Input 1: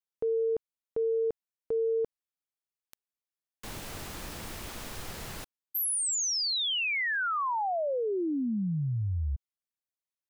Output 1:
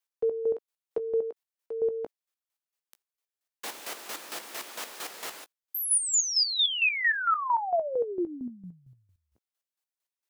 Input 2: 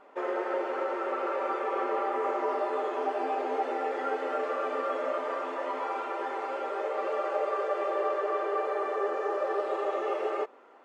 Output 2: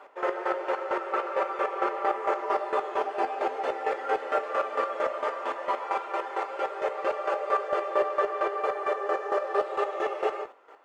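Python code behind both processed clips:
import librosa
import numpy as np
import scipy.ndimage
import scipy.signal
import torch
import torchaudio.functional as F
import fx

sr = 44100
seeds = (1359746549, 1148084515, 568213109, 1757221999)

y = scipy.signal.sosfilt(scipy.signal.bessel(4, 460.0, 'highpass', norm='mag', fs=sr, output='sos'), x)
y = fx.chopper(y, sr, hz=4.4, depth_pct=65, duty_pct=30)
y = fx.doubler(y, sr, ms=17.0, db=-13)
y = y * librosa.db_to_amplitude(7.5)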